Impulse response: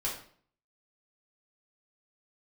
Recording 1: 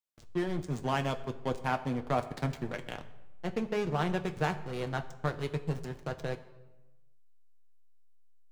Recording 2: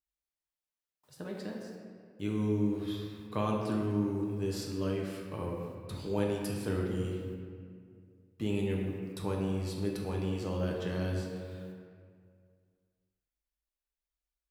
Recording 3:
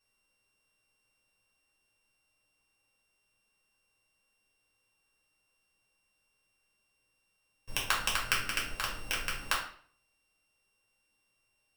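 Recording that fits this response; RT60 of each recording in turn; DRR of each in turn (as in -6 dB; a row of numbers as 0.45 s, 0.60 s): 3; 1.1 s, 2.1 s, 0.50 s; 5.5 dB, -1.5 dB, -5.0 dB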